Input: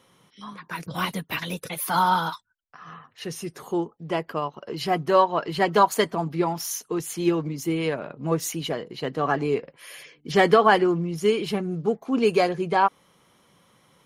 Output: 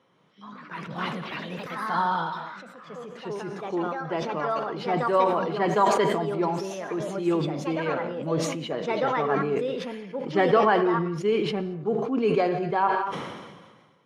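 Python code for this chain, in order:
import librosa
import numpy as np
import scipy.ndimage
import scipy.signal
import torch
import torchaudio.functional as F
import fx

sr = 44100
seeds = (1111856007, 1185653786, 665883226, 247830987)

y = scipy.signal.sosfilt(scipy.signal.butter(2, 85.0, 'highpass', fs=sr, output='sos'), x)
y = fx.low_shelf(y, sr, hz=110.0, db=-9.5)
y = fx.rev_gated(y, sr, seeds[0], gate_ms=250, shape='flat', drr_db=11.5)
y = fx.echo_pitch(y, sr, ms=161, semitones=3, count=2, db_per_echo=-6.0)
y = fx.spacing_loss(y, sr, db_at_10k=23)
y = fx.sustainer(y, sr, db_per_s=38.0)
y = y * librosa.db_to_amplitude(-2.0)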